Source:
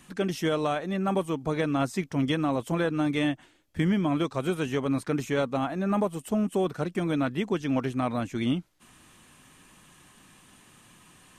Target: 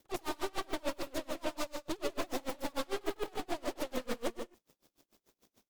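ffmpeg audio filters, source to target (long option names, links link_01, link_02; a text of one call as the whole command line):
ffmpeg -i in.wav -af "flanger=delay=6.6:depth=5.1:regen=-50:speed=0.8:shape=sinusoidal,asoftclip=type=hard:threshold=-35.5dB,equalizer=frequency=125:width_type=o:width=1:gain=5,equalizer=frequency=500:width_type=o:width=1:gain=3,equalizer=frequency=1000:width_type=o:width=1:gain=-9,aeval=exprs='sgn(val(0))*max(abs(val(0))-0.00133,0)':channel_layout=same,aeval=exprs='0.0299*(cos(1*acos(clip(val(0)/0.0299,-1,1)))-cos(1*PI/2))+0.0106*(cos(2*acos(clip(val(0)/0.0299,-1,1)))-cos(2*PI/2))+0.00211*(cos(6*acos(clip(val(0)/0.0299,-1,1)))-cos(6*PI/2))+0.00944*(cos(7*acos(clip(val(0)/0.0299,-1,1)))-cos(7*PI/2))':channel_layout=same,aecho=1:1:190|313.5|393.8|446|479.9:0.631|0.398|0.251|0.158|0.1,asetrate=88200,aresample=44100,aeval=exprs='val(0)*pow(10,-30*(0.5-0.5*cos(2*PI*6.8*n/s))/20)':channel_layout=same,volume=1dB" out.wav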